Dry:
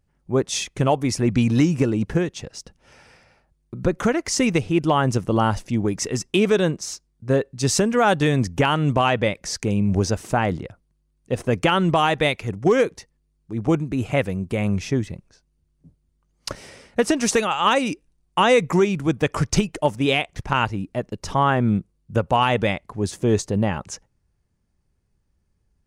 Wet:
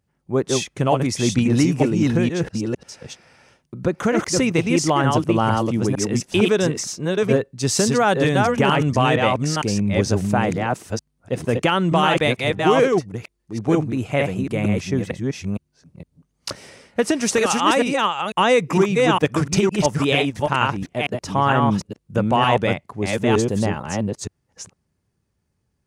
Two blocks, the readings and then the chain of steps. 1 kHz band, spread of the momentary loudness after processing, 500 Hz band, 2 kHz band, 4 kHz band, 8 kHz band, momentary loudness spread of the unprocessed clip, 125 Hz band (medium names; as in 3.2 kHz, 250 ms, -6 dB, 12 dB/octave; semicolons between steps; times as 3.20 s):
+2.0 dB, 11 LU, +2.0 dB, +2.0 dB, +2.0 dB, +2.0 dB, 11 LU, +1.0 dB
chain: chunks repeated in reverse 458 ms, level -2 dB; high-pass 88 Hz